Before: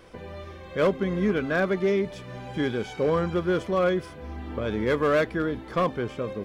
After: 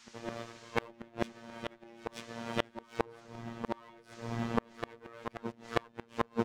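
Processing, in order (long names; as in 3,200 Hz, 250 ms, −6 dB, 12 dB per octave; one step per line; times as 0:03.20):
lower of the sound and its delayed copy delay 4.5 ms
high-pass filter 40 Hz 12 dB per octave
mains-hum notches 60/120/180/240/300/360 Hz
downward expander −34 dBFS
pitch-shifted copies added −3 semitones −8 dB
phases set to zero 116 Hz
noise in a band 870–6,900 Hz −68 dBFS
gate with flip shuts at −19 dBFS, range −35 dB
backwards echo 936 ms −8.5 dB
level +9 dB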